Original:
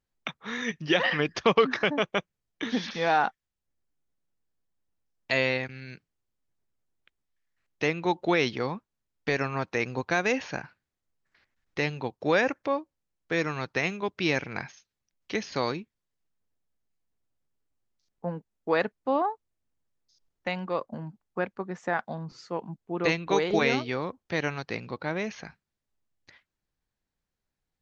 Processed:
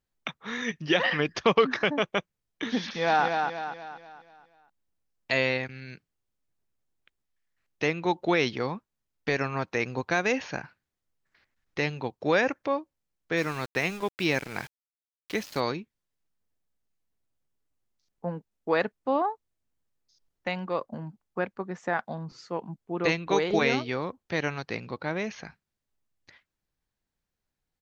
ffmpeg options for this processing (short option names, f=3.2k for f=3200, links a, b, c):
-filter_complex "[0:a]asplit=2[a][b];[b]afade=t=in:st=2.83:d=0.01,afade=t=out:st=3.25:d=0.01,aecho=0:1:240|480|720|960|1200|1440:0.595662|0.268048|0.120622|0.0542797|0.0244259|0.0109916[c];[a][c]amix=inputs=2:normalize=0,asplit=3[d][e][f];[d]afade=t=out:st=13.36:d=0.02[g];[e]aeval=exprs='val(0)*gte(abs(val(0)),0.0106)':c=same,afade=t=in:st=13.36:d=0.02,afade=t=out:st=15.59:d=0.02[h];[f]afade=t=in:st=15.59:d=0.02[i];[g][h][i]amix=inputs=3:normalize=0"